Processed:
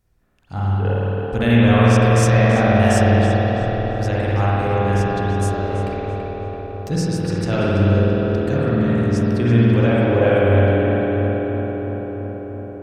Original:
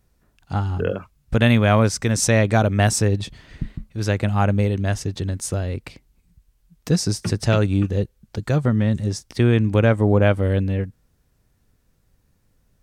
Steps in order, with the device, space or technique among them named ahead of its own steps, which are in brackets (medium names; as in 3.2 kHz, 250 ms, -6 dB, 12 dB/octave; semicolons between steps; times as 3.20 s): dub delay into a spring reverb (filtered feedback delay 333 ms, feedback 75%, low-pass 2.7 kHz, level -5.5 dB; spring tank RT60 3.2 s, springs 51 ms, chirp 80 ms, DRR -7.5 dB); trim -6 dB